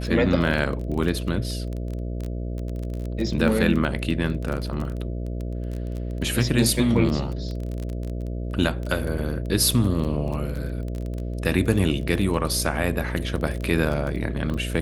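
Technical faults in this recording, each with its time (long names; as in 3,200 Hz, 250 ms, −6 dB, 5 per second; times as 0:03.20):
mains buzz 60 Hz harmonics 11 −29 dBFS
surface crackle 21 per second −27 dBFS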